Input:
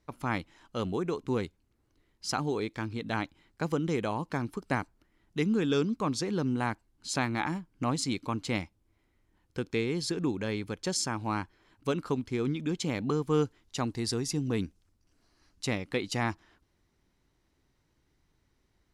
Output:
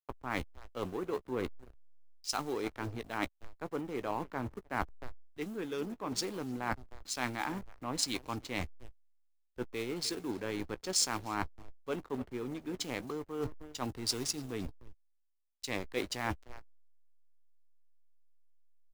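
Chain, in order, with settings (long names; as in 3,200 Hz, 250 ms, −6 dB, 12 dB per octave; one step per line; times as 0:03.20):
one scale factor per block 5 bits
on a send: repeating echo 307 ms, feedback 29%, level −16.5 dB
on the sum: slack as between gear wheels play −33.5 dBFS
reversed playback
downward compressor 16 to 1, threshold −37 dBFS, peak gain reduction 16.5 dB
reversed playback
parametric band 160 Hz −9 dB 1.2 octaves
double-tracking delay 16 ms −14 dB
multiband upward and downward expander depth 70%
level +6.5 dB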